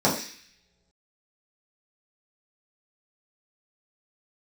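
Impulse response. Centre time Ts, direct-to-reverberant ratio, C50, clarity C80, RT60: 30 ms, -7.0 dB, 7.0 dB, 10.0 dB, no single decay rate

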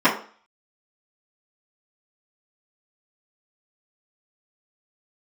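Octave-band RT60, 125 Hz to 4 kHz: 0.30 s, 0.40 s, 0.40 s, 0.45 s, 0.40 s, 0.40 s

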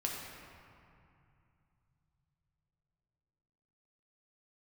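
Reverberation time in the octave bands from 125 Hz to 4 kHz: 5.1 s, 3.5 s, 2.4 s, 2.7 s, 2.3 s, 1.5 s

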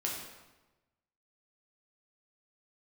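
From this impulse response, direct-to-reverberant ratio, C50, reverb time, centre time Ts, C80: -3.0 dB, 2.0 dB, 1.1 s, 56 ms, 4.5 dB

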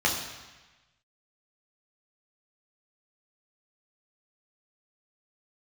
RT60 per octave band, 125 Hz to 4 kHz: 1.4 s, 1.1 s, 1.1 s, 1.2 s, 1.3 s, 1.2 s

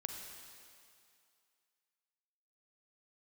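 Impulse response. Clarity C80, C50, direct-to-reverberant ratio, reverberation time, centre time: 4.5 dB, 3.5 dB, 3.0 dB, 2.4 s, 70 ms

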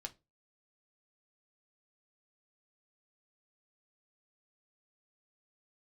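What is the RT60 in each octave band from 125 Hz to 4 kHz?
0.35 s, 0.30 s, 0.30 s, 0.20 s, 0.20 s, 0.20 s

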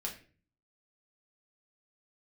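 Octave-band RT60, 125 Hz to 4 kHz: 0.75 s, 0.60 s, 0.45 s, 0.35 s, 0.40 s, 0.35 s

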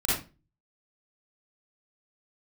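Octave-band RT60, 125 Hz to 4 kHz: 0.55 s, 0.40 s, 0.35 s, 0.30 s, 0.25 s, 0.25 s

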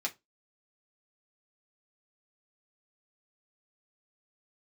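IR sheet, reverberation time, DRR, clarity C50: 0.20 s, -1.0 dB, 20.5 dB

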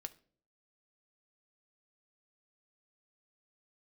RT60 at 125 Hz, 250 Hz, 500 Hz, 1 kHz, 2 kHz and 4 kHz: 0.70 s, 0.65 s, 0.60 s, 0.40 s, 0.35 s, 0.35 s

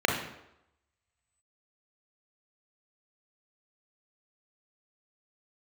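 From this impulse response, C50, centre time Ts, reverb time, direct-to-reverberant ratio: 4.0 dB, 38 ms, 0.85 s, 0.0 dB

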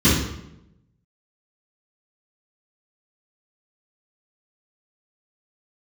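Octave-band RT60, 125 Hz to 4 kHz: 1.1 s, 1.0 s, 0.90 s, 0.80 s, 0.70 s, 0.65 s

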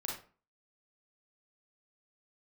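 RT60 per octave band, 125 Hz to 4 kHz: 0.45 s, 0.45 s, 0.40 s, 0.40 s, 0.35 s, 0.25 s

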